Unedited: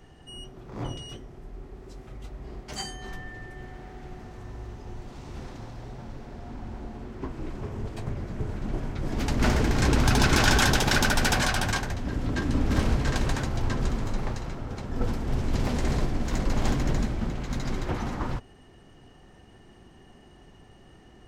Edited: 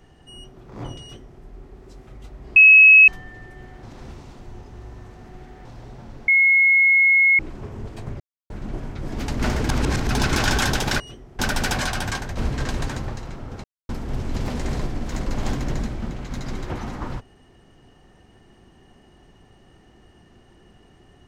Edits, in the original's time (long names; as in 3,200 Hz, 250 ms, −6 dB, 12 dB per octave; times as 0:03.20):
0:01.02–0:01.41: duplicate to 0:11.00
0:02.56–0:03.08: beep over 2,570 Hz −6 dBFS
0:03.83–0:05.65: reverse
0:06.28–0:07.39: beep over 2,170 Hz −12 dBFS
0:08.20–0:08.50: silence
0:09.69–0:10.09: reverse
0:11.98–0:12.84: remove
0:13.55–0:14.27: remove
0:14.83–0:15.08: silence